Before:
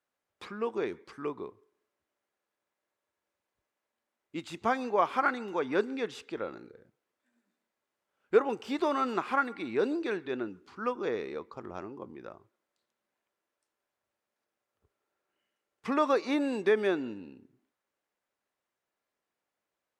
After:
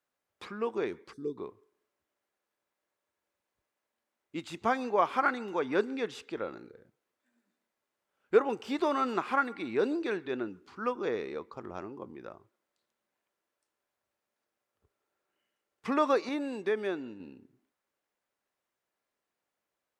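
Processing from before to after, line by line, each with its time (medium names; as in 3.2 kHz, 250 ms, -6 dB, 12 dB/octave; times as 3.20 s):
1.13–1.38 s: time-frequency box 510–3400 Hz -24 dB
16.29–17.20 s: gain -5 dB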